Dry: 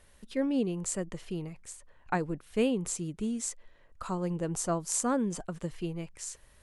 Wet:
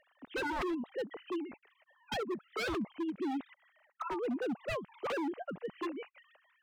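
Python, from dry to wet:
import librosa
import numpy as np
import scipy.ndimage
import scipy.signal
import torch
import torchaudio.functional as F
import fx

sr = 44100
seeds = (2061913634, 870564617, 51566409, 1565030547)

y = fx.sine_speech(x, sr)
y = 10.0 ** (-30.0 / 20.0) * (np.abs((y / 10.0 ** (-30.0 / 20.0) + 3.0) % 4.0 - 2.0) - 1.0)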